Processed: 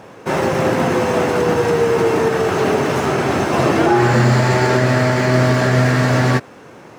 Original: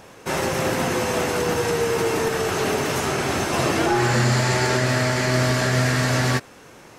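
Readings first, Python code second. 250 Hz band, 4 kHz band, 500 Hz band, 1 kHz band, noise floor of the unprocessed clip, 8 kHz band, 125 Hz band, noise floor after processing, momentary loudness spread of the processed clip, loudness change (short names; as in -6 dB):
+7.0 dB, -0.5 dB, +7.0 dB, +6.0 dB, -46 dBFS, -3.5 dB, +6.0 dB, -40 dBFS, 4 LU, +5.5 dB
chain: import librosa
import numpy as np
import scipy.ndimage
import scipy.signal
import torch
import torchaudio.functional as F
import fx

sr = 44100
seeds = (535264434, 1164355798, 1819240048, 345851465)

y = scipy.signal.medfilt(x, 3)
y = scipy.signal.sosfilt(scipy.signal.butter(2, 97.0, 'highpass', fs=sr, output='sos'), y)
y = fx.high_shelf(y, sr, hz=2300.0, db=-10.5)
y = F.gain(torch.from_numpy(y), 7.5).numpy()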